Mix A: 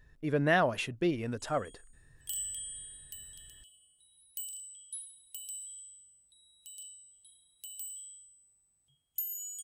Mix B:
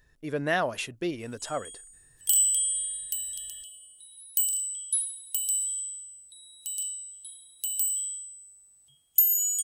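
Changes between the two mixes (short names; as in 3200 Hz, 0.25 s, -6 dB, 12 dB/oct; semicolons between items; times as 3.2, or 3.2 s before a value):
background +8.5 dB; master: add tone controls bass -5 dB, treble +7 dB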